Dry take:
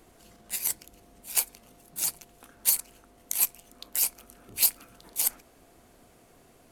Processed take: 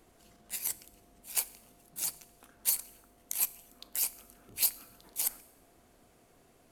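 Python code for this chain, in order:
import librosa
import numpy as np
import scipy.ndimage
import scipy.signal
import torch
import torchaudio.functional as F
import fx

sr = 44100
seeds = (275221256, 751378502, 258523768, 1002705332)

y = fx.rev_schroeder(x, sr, rt60_s=0.85, comb_ms=29, drr_db=19.5)
y = y * librosa.db_to_amplitude(-5.5)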